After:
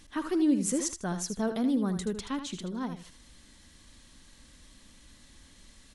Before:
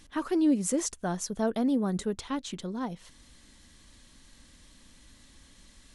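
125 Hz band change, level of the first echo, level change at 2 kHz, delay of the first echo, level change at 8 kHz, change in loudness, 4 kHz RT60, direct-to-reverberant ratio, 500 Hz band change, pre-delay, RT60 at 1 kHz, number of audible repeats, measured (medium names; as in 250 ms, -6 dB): 0.0 dB, -9.5 dB, 0.0 dB, 78 ms, +0.5 dB, -0.5 dB, no reverb, no reverb, -2.5 dB, no reverb, no reverb, 2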